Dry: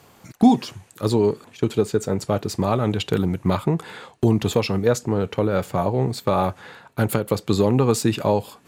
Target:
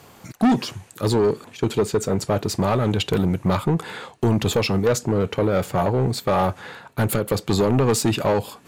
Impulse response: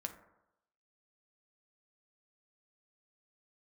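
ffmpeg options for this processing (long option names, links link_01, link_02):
-af "asoftclip=type=tanh:threshold=-17dB,volume=4dB"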